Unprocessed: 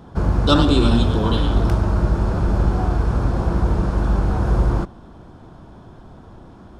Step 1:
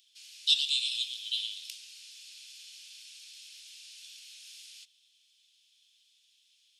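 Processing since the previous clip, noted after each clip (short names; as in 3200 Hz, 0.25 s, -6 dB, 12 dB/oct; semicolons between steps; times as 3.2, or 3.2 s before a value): steep high-pass 2700 Hz 48 dB/oct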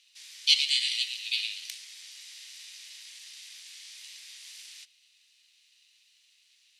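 ring modulator 570 Hz; gain +6 dB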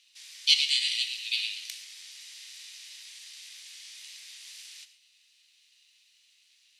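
non-linear reverb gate 0.15 s flat, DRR 10.5 dB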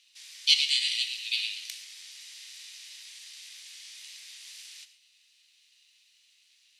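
nothing audible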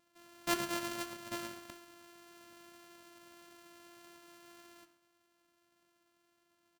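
sample sorter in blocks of 128 samples; doubler 21 ms -13.5 dB; flange 1.7 Hz, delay 9 ms, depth 3.9 ms, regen -85%; gain -6.5 dB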